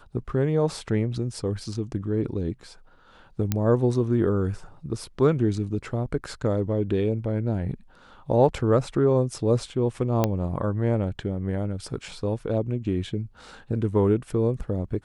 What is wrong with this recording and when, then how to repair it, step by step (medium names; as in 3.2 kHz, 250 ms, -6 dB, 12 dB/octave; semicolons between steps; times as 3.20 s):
3.52 s: pop -9 dBFS
10.24 s: pop -8 dBFS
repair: de-click